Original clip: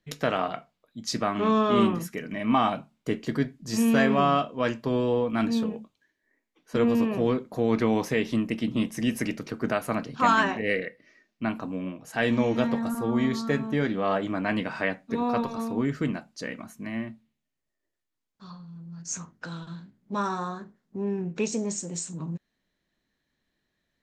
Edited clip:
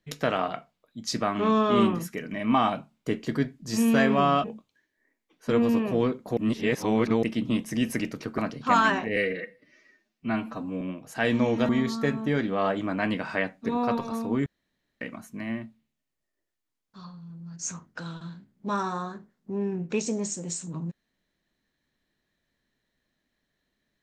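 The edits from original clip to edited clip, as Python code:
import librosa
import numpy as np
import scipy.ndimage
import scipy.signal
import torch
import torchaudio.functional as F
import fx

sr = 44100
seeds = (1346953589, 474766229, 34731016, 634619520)

y = fx.edit(x, sr, fx.cut(start_s=4.44, length_s=1.26),
    fx.reverse_span(start_s=7.63, length_s=0.86),
    fx.cut(start_s=9.64, length_s=0.27),
    fx.stretch_span(start_s=10.69, length_s=1.1, factor=1.5),
    fx.cut(start_s=12.67, length_s=0.48),
    fx.room_tone_fill(start_s=15.92, length_s=0.55), tone=tone)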